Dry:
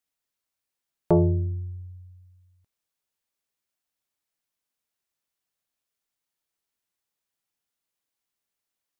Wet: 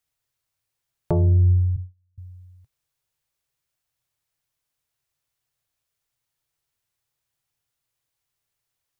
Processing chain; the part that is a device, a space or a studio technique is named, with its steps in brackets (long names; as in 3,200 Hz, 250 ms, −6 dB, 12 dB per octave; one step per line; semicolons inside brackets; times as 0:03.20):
0:01.76–0:02.18: noise gate −38 dBFS, range −35 dB
car stereo with a boomy subwoofer (low shelf with overshoot 160 Hz +6.5 dB, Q 3; brickwall limiter −15.5 dBFS, peak gain reduction 9 dB)
level +4 dB